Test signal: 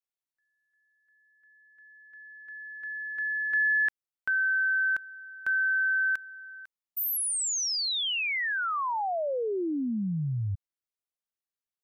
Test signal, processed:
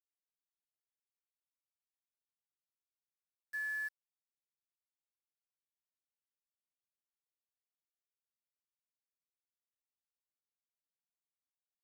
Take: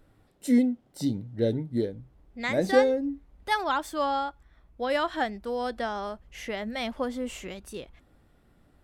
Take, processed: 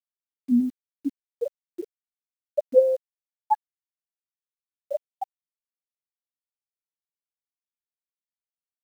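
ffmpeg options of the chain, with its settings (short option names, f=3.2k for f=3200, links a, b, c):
-af "afftfilt=real='re*gte(hypot(re,im),0.708)':imag='im*gte(hypot(re,im),0.708)':win_size=1024:overlap=0.75,lowpass=f=790:t=q:w=4.2,acrusher=bits=8:mix=0:aa=0.000001"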